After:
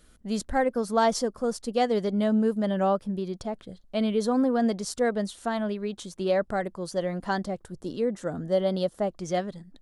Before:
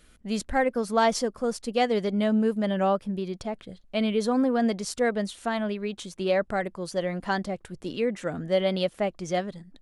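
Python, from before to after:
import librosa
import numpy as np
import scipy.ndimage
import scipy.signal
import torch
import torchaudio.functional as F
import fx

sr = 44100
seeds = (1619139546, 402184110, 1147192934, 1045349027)

y = fx.peak_eq(x, sr, hz=2400.0, db=fx.steps((0.0, -7.0), (7.63, -14.5), (9.11, -4.5)), octaves=0.82)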